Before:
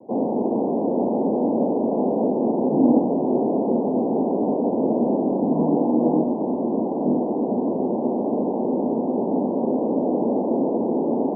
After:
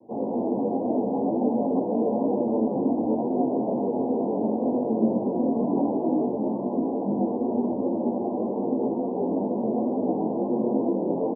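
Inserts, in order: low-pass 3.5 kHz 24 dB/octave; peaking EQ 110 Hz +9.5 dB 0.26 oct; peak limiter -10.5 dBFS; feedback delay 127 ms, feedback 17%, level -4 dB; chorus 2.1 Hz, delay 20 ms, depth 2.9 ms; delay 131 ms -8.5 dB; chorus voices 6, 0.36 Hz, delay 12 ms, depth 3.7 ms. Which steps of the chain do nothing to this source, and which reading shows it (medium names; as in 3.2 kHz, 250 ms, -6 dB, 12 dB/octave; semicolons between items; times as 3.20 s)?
low-pass 3.5 kHz: input has nothing above 1 kHz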